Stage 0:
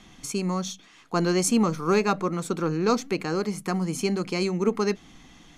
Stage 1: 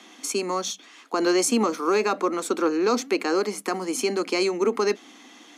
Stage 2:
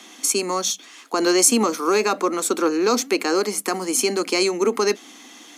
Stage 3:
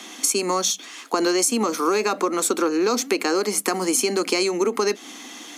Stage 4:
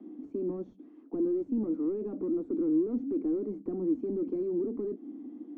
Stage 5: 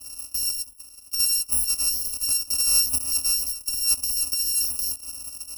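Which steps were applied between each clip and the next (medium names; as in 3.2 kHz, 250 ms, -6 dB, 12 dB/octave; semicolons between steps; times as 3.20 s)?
steep high-pass 240 Hz 48 dB/octave; peak limiter -18 dBFS, peak gain reduction 6.5 dB; trim +5 dB
treble shelf 6 kHz +11.5 dB; trim +2.5 dB
compression, threshold -23 dBFS, peak gain reduction 12 dB; trim +5 dB
saturation -24 dBFS, distortion -9 dB; resonant low-pass 300 Hz, resonance Q 3.7; trim -7 dB
bit-reversed sample order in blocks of 256 samples; static phaser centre 480 Hz, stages 6; trim +7 dB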